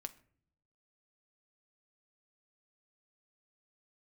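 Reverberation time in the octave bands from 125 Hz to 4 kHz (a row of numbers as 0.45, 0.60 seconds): 1.1, 0.90, 0.65, 0.45, 0.45, 0.35 seconds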